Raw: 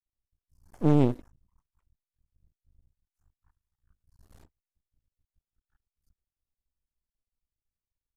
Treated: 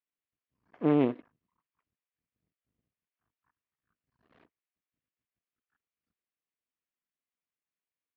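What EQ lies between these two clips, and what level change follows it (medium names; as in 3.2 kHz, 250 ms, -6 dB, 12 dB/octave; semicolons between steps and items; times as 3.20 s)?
cabinet simulation 340–2800 Hz, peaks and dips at 370 Hz -4 dB, 560 Hz -5 dB, 840 Hz -9 dB, 1.4 kHz -4 dB; +4.5 dB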